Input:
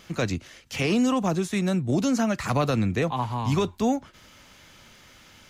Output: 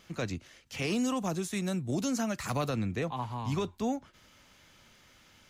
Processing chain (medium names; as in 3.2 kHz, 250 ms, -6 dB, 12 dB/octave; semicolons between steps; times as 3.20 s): 0.82–2.69 s: treble shelf 5.7 kHz +9.5 dB; trim -8 dB